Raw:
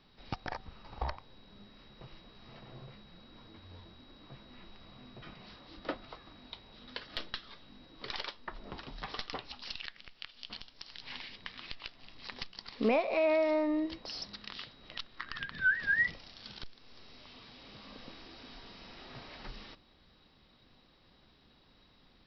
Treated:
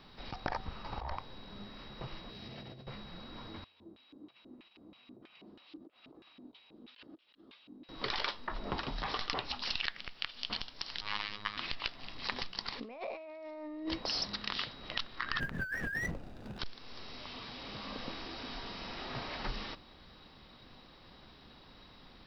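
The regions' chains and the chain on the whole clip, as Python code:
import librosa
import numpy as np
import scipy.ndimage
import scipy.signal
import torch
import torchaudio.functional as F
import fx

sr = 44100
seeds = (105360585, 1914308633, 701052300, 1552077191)

y = fx.chain(x, sr, fx.highpass(hz=60.0, slope=12),
    fx.peak_eq(hz=1100.0, db=-11.0, octaves=1.2),
    fx.over_compress(threshold_db=-56.0, ratio=-1.0), at=(2.3, 2.87))
y = fx.chain(y, sr, fx.peak_eq(hz=2000.0, db=-8.5, octaves=1.3),
    fx.over_compress(threshold_db=-53.0, ratio=-1.0),
    fx.filter_lfo_bandpass(shape='square', hz=3.1, low_hz=310.0, high_hz=2600.0, q=3.8), at=(3.64, 7.89))
y = fx.chain(y, sr, fx.peak_eq(hz=1200.0, db=9.5, octaves=0.46),
    fx.quant_float(bits=8),
    fx.robotise(hz=104.0), at=(11.01, 11.57))
y = fx.chain(y, sr, fx.median_filter(points=41),
    fx.high_shelf(hz=5300.0, db=-10.5),
    fx.over_compress(threshold_db=-44.0, ratio=-1.0), at=(15.4, 16.59))
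y = fx.peak_eq(y, sr, hz=1000.0, db=3.0, octaves=1.3)
y = fx.over_compress(y, sr, threshold_db=-40.0, ratio=-1.0)
y = y * librosa.db_to_amplitude(2.5)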